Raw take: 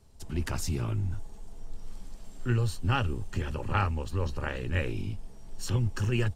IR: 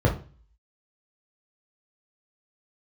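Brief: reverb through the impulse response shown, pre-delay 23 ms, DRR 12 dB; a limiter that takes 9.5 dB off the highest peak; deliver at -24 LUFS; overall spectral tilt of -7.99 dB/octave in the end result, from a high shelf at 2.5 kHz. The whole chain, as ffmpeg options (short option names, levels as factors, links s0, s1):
-filter_complex "[0:a]highshelf=f=2500:g=-4.5,alimiter=limit=0.0668:level=0:latency=1,asplit=2[s0][s1];[1:a]atrim=start_sample=2205,adelay=23[s2];[s1][s2]afir=irnorm=-1:irlink=0,volume=0.0473[s3];[s0][s3]amix=inputs=2:normalize=0,volume=1.58"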